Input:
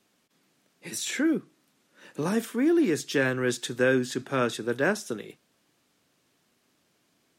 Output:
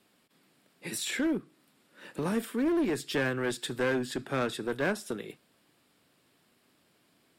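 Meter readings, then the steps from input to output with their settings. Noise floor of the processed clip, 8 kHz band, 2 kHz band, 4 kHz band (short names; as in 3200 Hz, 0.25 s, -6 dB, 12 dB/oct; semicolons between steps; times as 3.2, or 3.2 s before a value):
-69 dBFS, -4.5 dB, -4.5 dB, -2.0 dB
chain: bell 6200 Hz -12 dB 0.24 oct; in parallel at +3 dB: compressor, threshold -36 dBFS, peak gain reduction 17 dB; on the sum: one-sided clip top -21.5 dBFS; gain -5.5 dB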